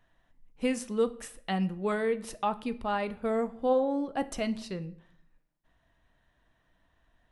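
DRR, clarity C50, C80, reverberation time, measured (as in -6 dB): 11.0 dB, 17.5 dB, 21.5 dB, 0.60 s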